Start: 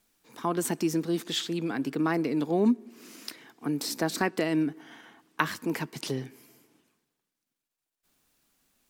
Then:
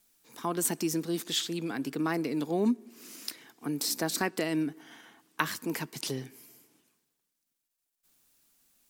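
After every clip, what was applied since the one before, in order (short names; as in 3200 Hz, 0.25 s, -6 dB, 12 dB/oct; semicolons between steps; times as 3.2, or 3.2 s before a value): high shelf 4500 Hz +9.5 dB; gain -3.5 dB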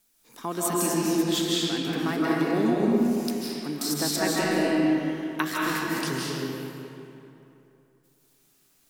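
reverb RT60 2.9 s, pre-delay 0.115 s, DRR -5.5 dB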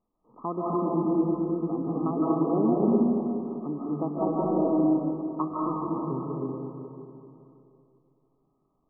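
brick-wall FIR low-pass 1300 Hz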